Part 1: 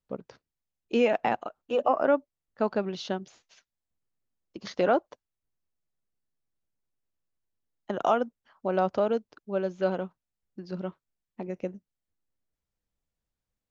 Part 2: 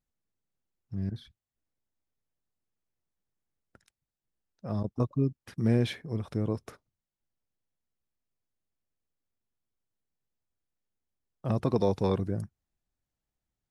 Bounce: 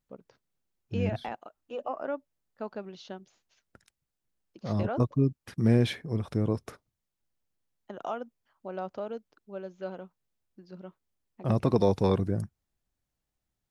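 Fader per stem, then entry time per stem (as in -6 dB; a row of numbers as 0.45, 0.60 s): -10.5, +2.5 dB; 0.00, 0.00 s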